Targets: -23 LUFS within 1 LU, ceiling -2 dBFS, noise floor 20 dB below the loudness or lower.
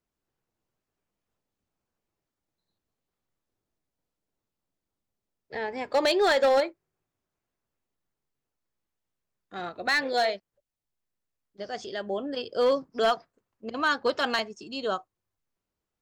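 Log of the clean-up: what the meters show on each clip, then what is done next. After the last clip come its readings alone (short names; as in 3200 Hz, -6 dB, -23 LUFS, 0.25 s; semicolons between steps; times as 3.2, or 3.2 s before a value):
clipped 0.4%; flat tops at -17.0 dBFS; loudness -27.0 LUFS; peak -17.0 dBFS; loudness target -23.0 LUFS
-> clip repair -17 dBFS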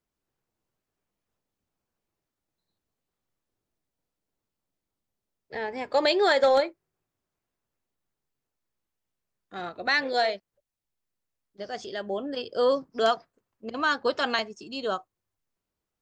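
clipped 0.0%; loudness -26.5 LUFS; peak -10.0 dBFS; loudness target -23.0 LUFS
-> gain +3.5 dB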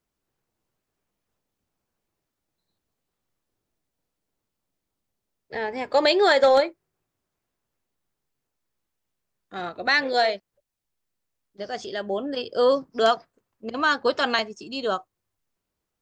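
loudness -23.0 LUFS; peak -6.5 dBFS; noise floor -83 dBFS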